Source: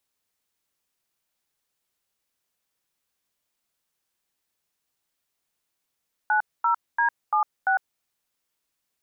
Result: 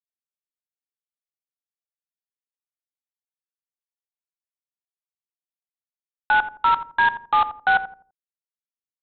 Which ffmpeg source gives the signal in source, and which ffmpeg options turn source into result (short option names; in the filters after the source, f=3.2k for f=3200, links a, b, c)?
-f lavfi -i "aevalsrc='0.0891*clip(min(mod(t,0.342),0.104-mod(t,0.342))/0.002,0,1)*(eq(floor(t/0.342),0)*(sin(2*PI*852*mod(t,0.342))+sin(2*PI*1477*mod(t,0.342)))+eq(floor(t/0.342),1)*(sin(2*PI*941*mod(t,0.342))+sin(2*PI*1336*mod(t,0.342)))+eq(floor(t/0.342),2)*(sin(2*PI*941*mod(t,0.342))+sin(2*PI*1633*mod(t,0.342)))+eq(floor(t/0.342),3)*(sin(2*PI*852*mod(t,0.342))+sin(2*PI*1209*mod(t,0.342)))+eq(floor(t/0.342),4)*(sin(2*PI*770*mod(t,0.342))+sin(2*PI*1477*mod(t,0.342))))':d=1.71:s=44100"
-filter_complex "[0:a]acontrast=34,aresample=8000,acrusher=bits=5:dc=4:mix=0:aa=0.000001,aresample=44100,asplit=2[a][b];[b]adelay=84,lowpass=f=920:p=1,volume=-10dB,asplit=2[c][d];[d]adelay=84,lowpass=f=920:p=1,volume=0.34,asplit=2[e][f];[f]adelay=84,lowpass=f=920:p=1,volume=0.34,asplit=2[g][h];[h]adelay=84,lowpass=f=920:p=1,volume=0.34[i];[a][c][e][g][i]amix=inputs=5:normalize=0"